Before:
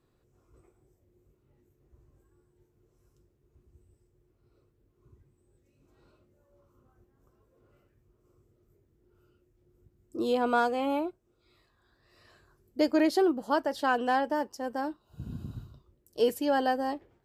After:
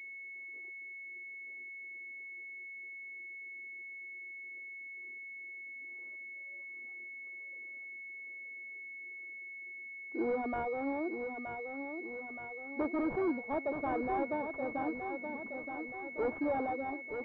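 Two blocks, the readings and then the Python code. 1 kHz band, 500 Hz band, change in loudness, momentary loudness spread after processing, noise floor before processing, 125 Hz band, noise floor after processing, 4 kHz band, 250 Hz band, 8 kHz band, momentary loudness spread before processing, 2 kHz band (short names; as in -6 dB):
-7.5 dB, -6.5 dB, -10.5 dB, 10 LU, -71 dBFS, -8.0 dB, -47 dBFS, under -25 dB, -6.0 dB, under -25 dB, 17 LU, 0.0 dB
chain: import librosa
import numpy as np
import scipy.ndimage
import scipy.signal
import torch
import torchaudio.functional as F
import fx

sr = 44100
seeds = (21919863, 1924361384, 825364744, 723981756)

y = fx.diode_clip(x, sr, knee_db=-29.5)
y = 10.0 ** (-26.0 / 20.0) * (np.abs((y / 10.0 ** (-26.0 / 20.0) + 3.0) % 4.0 - 2.0) - 1.0)
y = fx.dereverb_blind(y, sr, rt60_s=0.98)
y = fx.brickwall_highpass(y, sr, low_hz=210.0)
y = fx.echo_feedback(y, sr, ms=923, feedback_pct=54, wet_db=-7)
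y = fx.pwm(y, sr, carrier_hz=2200.0)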